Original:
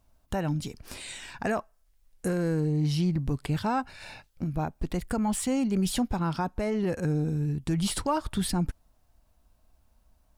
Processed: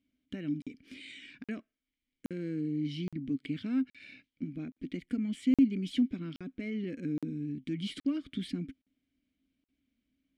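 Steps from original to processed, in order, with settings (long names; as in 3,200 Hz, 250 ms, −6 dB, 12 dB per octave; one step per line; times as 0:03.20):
formant filter i
regular buffer underruns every 0.82 s, samples 2,048, zero, from 0:00.62
level +6 dB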